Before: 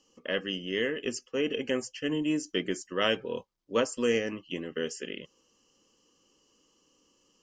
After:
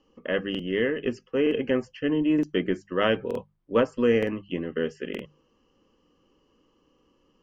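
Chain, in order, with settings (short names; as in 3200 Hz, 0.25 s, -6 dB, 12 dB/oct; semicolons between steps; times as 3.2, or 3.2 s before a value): LPF 2100 Hz 12 dB/oct; low shelf 130 Hz +9 dB; notches 50/100/150/200 Hz; crackling interface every 0.92 s, samples 2048, repeat, from 0.5; gain +4.5 dB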